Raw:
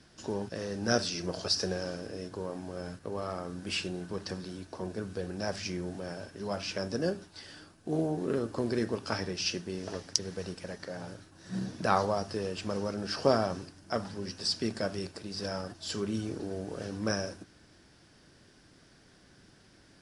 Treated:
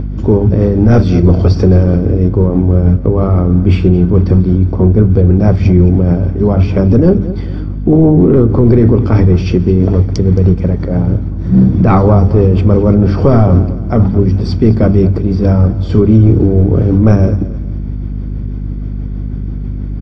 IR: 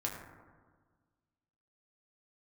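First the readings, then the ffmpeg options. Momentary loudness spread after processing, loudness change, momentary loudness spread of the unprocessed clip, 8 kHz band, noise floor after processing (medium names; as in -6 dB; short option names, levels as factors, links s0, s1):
13 LU, +24.0 dB, 11 LU, no reading, -19 dBFS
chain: -filter_complex "[0:a]lowpass=1900,equalizer=f=79:w=0.99:g=13.5,tremolo=f=6.2:d=0.38,lowshelf=f=720:t=q:w=1.5:g=9.5,bandreject=f=50:t=h:w=6,bandreject=f=100:t=h:w=6,bandreject=f=150:t=h:w=6,bandreject=f=200:t=h:w=6,aecho=1:1:0.9:0.55,asplit=2[s0][s1];[s1]aecho=0:1:218|436|654:0.126|0.039|0.0121[s2];[s0][s2]amix=inputs=2:normalize=0,aeval=exprs='val(0)+0.0178*(sin(2*PI*50*n/s)+sin(2*PI*2*50*n/s)/2+sin(2*PI*3*50*n/s)/3+sin(2*PI*4*50*n/s)/4+sin(2*PI*5*50*n/s)/5)':c=same,apsyclip=7.94,acompressor=mode=upward:threshold=0.2:ratio=2.5,agate=range=0.0224:threshold=0.0631:ratio=3:detection=peak,volume=0.841"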